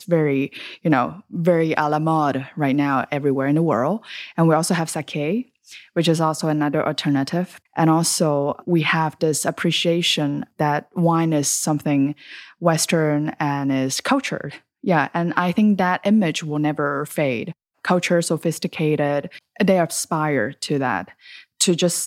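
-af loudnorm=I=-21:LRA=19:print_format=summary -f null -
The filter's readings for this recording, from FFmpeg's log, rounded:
Input Integrated:    -20.6 LUFS
Input True Peak:      -2.9 dBTP
Input LRA:             1.6 LU
Input Threshold:     -30.8 LUFS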